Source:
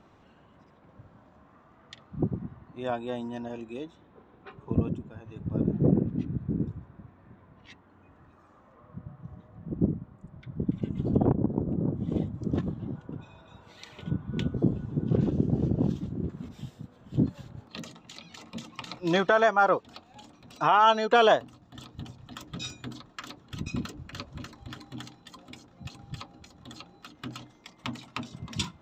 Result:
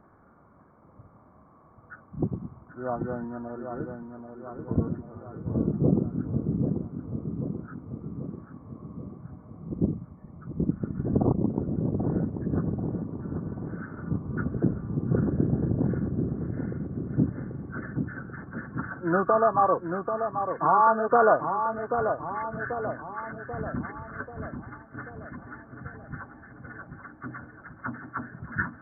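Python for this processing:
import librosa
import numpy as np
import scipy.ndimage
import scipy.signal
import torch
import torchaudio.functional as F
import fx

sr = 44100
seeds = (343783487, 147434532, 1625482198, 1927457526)

y = fx.freq_compress(x, sr, knee_hz=1100.0, ratio=4.0)
y = fx.echo_filtered(y, sr, ms=787, feedback_pct=61, hz=1400.0, wet_db=-6)
y = fx.band_widen(y, sr, depth_pct=100, at=(24.14, 24.97))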